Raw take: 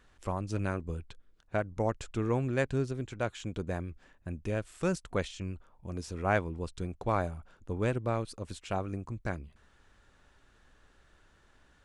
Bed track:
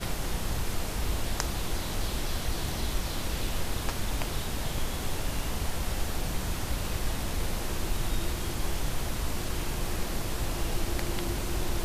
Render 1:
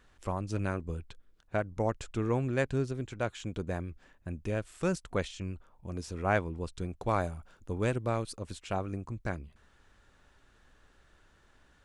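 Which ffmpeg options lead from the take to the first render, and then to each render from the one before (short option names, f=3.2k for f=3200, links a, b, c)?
-filter_complex "[0:a]asettb=1/sr,asplit=3[a][b][c];[a]atrim=end=7.014[d];[b]atrim=start=7.01:end=8.36,asetpts=PTS-STARTPTS,afade=t=in:d=0.004:c=qsin,afade=t=out:st=1.346:d=0.004:c=qsin,highshelf=f=4.4k:g=6[e];[c]atrim=start=8.356[f];[d][e]acrossfade=d=0.004:c1=hsin:c2=qsin[g];[g][f]acrossfade=d=0.004:c1=qsin:c2=hsin"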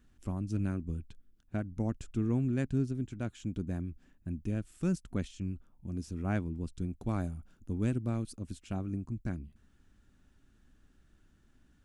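-af "equalizer=f=250:t=o:w=1:g=7,equalizer=f=500:t=o:w=1:g=-11,equalizer=f=1k:t=o:w=1:g=-10,equalizer=f=2k:t=o:w=1:g=-7,equalizer=f=4k:t=o:w=1:g=-7,equalizer=f=8k:t=o:w=1:g=-4"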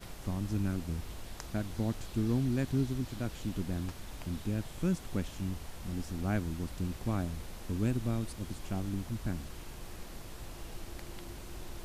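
-filter_complex "[1:a]volume=-14dB[a];[0:a][a]amix=inputs=2:normalize=0"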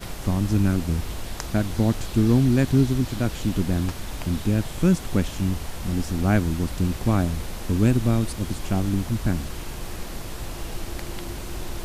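-af "volume=12dB"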